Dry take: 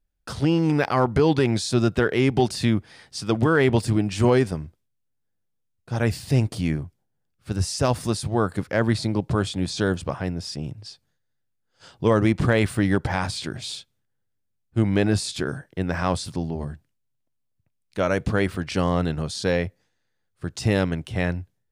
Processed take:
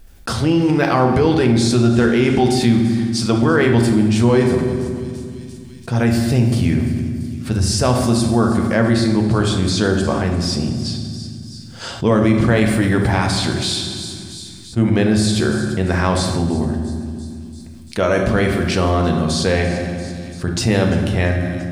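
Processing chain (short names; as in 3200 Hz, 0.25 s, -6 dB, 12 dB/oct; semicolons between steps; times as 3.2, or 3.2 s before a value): thin delay 0.341 s, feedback 43%, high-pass 4900 Hz, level -14 dB; on a send at -2.5 dB: reverb RT60 1.3 s, pre-delay 4 ms; on the sum: fast leveller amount 50%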